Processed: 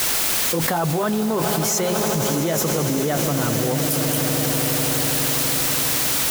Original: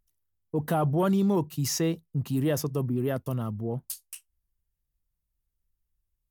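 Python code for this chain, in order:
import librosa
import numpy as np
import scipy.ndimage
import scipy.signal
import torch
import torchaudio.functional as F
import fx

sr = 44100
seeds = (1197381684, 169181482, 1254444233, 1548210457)

p1 = fx.pitch_heads(x, sr, semitones=1.5)
p2 = fx.low_shelf(p1, sr, hz=300.0, db=-10.5)
p3 = fx.quant_dither(p2, sr, seeds[0], bits=6, dither='triangular')
p4 = p2 + F.gain(torch.from_numpy(p3), -3.5).numpy()
p5 = fx.echo_swell(p4, sr, ms=82, loudest=8, wet_db=-17)
p6 = fx.env_flatten(p5, sr, amount_pct=100)
y = F.gain(torch.from_numpy(p6), 1.5).numpy()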